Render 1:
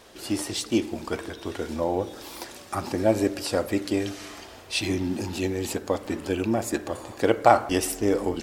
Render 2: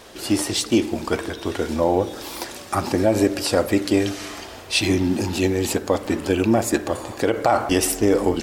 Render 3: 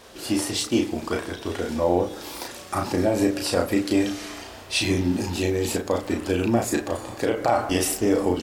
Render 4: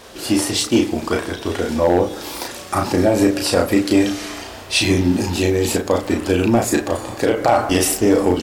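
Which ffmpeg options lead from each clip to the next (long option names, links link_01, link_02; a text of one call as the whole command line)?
ffmpeg -i in.wav -af "alimiter=level_in=13dB:limit=-1dB:release=50:level=0:latency=1,volume=-6dB" out.wav
ffmpeg -i in.wav -filter_complex "[0:a]asplit=2[link_01][link_02];[link_02]adelay=34,volume=-3.5dB[link_03];[link_01][link_03]amix=inputs=2:normalize=0,volume=-4.5dB" out.wav
ffmpeg -i in.wav -af "volume=13dB,asoftclip=hard,volume=-13dB,volume=6.5dB" out.wav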